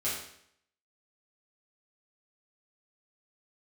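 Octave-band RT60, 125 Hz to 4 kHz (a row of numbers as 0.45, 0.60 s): 0.70, 0.70, 0.70, 0.70, 0.70, 0.65 s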